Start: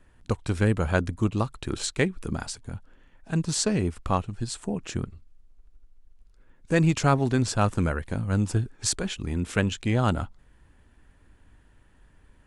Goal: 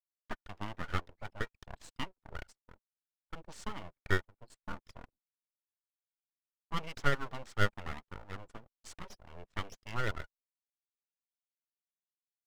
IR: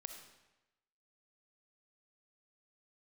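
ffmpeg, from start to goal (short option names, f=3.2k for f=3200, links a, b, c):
-filter_complex "[0:a]anlmdn=10,highpass=f=110:w=0.5412,highpass=f=110:w=1.3066,aphaser=in_gain=1:out_gain=1:delay=4.3:decay=0.36:speed=1.7:type=sinusoidal,asplit=3[a][b][c];[a]bandpass=f=730:t=q:w=8,volume=0dB[d];[b]bandpass=f=1.09k:t=q:w=8,volume=-6dB[e];[c]bandpass=f=2.44k:t=q:w=8,volume=-9dB[f];[d][e][f]amix=inputs=3:normalize=0,acrossover=split=5100[g][h];[g]aeval=exprs='abs(val(0))':c=same[i];[i][h]amix=inputs=2:normalize=0,agate=range=-33dB:threshold=-59dB:ratio=3:detection=peak,volume=3dB"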